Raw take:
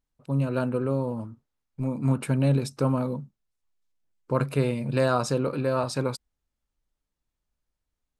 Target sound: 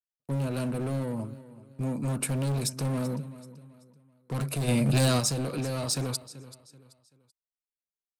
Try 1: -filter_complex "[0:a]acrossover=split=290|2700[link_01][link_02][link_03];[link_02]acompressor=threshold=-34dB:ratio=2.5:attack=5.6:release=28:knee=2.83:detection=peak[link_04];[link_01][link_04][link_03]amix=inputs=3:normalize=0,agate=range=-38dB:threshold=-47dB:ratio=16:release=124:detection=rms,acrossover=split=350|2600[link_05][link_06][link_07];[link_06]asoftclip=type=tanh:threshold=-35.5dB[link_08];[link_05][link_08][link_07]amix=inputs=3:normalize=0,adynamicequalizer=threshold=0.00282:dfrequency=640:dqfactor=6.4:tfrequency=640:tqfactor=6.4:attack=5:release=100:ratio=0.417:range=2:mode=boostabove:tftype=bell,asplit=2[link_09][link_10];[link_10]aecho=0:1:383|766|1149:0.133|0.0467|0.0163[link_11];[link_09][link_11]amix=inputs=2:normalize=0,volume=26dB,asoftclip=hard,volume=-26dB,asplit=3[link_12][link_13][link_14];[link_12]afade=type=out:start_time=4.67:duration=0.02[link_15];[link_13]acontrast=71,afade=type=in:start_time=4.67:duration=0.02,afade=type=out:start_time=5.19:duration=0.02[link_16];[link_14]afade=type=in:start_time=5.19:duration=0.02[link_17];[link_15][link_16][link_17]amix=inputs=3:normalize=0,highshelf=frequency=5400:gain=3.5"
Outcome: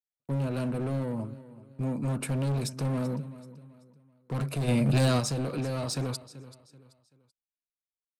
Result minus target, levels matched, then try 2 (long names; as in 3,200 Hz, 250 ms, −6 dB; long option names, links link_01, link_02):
8,000 Hz band −6.0 dB
-filter_complex "[0:a]acrossover=split=290|2700[link_01][link_02][link_03];[link_02]acompressor=threshold=-34dB:ratio=2.5:attack=5.6:release=28:knee=2.83:detection=peak[link_04];[link_01][link_04][link_03]amix=inputs=3:normalize=0,agate=range=-38dB:threshold=-47dB:ratio=16:release=124:detection=rms,acrossover=split=350|2600[link_05][link_06][link_07];[link_06]asoftclip=type=tanh:threshold=-35.5dB[link_08];[link_05][link_08][link_07]amix=inputs=3:normalize=0,adynamicequalizer=threshold=0.00282:dfrequency=640:dqfactor=6.4:tfrequency=640:tqfactor=6.4:attack=5:release=100:ratio=0.417:range=2:mode=boostabove:tftype=bell,asplit=2[link_09][link_10];[link_10]aecho=0:1:383|766|1149:0.133|0.0467|0.0163[link_11];[link_09][link_11]amix=inputs=2:normalize=0,volume=26dB,asoftclip=hard,volume=-26dB,asplit=3[link_12][link_13][link_14];[link_12]afade=type=out:start_time=4.67:duration=0.02[link_15];[link_13]acontrast=71,afade=type=in:start_time=4.67:duration=0.02,afade=type=out:start_time=5.19:duration=0.02[link_16];[link_14]afade=type=in:start_time=5.19:duration=0.02[link_17];[link_15][link_16][link_17]amix=inputs=3:normalize=0,highshelf=frequency=5400:gain=13.5"